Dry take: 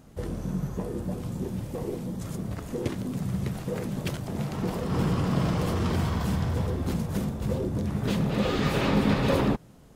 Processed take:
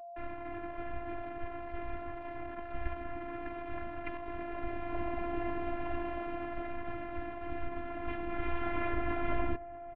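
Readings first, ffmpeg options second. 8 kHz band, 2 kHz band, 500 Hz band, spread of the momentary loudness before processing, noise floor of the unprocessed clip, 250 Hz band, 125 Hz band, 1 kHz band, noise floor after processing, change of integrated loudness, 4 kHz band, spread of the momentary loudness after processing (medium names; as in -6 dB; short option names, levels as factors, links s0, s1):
under -35 dB, -5.0 dB, -7.5 dB, 9 LU, -51 dBFS, -13.0 dB, -20.0 dB, -3.5 dB, -45 dBFS, -10.5 dB, -19.0 dB, 8 LU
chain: -filter_complex "[0:a]acrusher=bits=5:mix=0:aa=0.000001,aeval=exprs='val(0)+0.00708*sin(2*PI*1100*n/s)':c=same,highpass=f=170:t=q:w=0.5412,highpass=f=170:t=q:w=1.307,lowpass=f=2700:t=q:w=0.5176,lowpass=f=2700:t=q:w=0.7071,lowpass=f=2700:t=q:w=1.932,afreqshift=-380,asplit=2[s0][s1];[s1]adelay=641.4,volume=0.112,highshelf=f=4000:g=-14.4[s2];[s0][s2]amix=inputs=2:normalize=0,afftfilt=real='hypot(re,im)*cos(PI*b)':imag='0':win_size=512:overlap=0.75"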